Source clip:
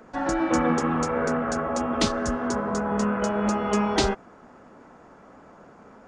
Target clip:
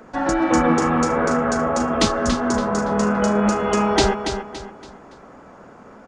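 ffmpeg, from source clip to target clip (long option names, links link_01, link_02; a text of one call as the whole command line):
ffmpeg -i in.wav -af "aecho=1:1:283|566|849|1132:0.398|0.139|0.0488|0.0171,volume=5dB" out.wav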